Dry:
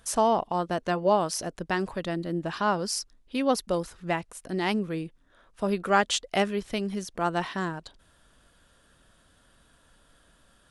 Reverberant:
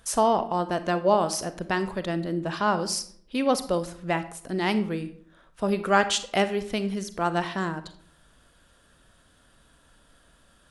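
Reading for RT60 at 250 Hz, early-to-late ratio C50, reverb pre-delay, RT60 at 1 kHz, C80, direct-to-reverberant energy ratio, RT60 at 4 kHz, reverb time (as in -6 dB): 0.70 s, 13.5 dB, 34 ms, 0.55 s, 17.0 dB, 11.0 dB, 0.40 s, 0.65 s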